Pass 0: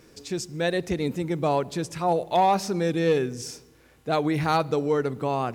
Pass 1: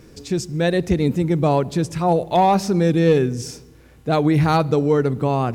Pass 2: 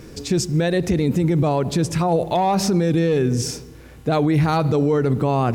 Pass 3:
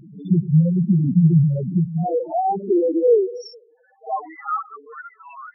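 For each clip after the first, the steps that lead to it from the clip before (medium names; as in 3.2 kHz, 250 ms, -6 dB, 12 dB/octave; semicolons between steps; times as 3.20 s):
bass shelf 270 Hz +10.5 dB; trim +3 dB
peak limiter -17 dBFS, peak gain reduction 11.5 dB; trim +6 dB
high-pass sweep 160 Hz -> 1.8 kHz, 1.55–5.16 s; loudest bins only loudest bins 2; reverse echo 57 ms -15.5 dB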